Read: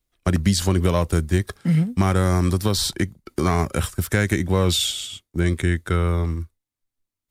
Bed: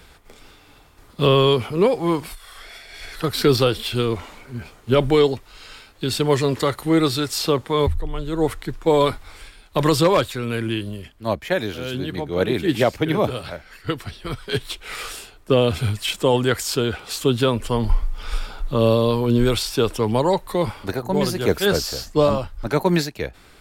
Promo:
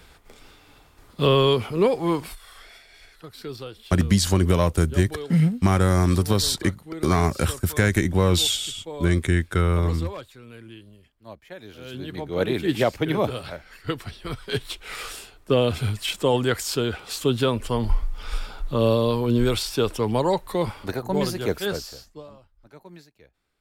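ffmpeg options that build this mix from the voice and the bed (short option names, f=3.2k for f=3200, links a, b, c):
-filter_complex "[0:a]adelay=3650,volume=0dB[a];[1:a]volume=13.5dB,afade=t=out:st=2.28:d=0.9:silence=0.149624,afade=t=in:st=11.6:d=0.8:silence=0.158489,afade=t=out:st=21.19:d=1.04:silence=0.0630957[b];[a][b]amix=inputs=2:normalize=0"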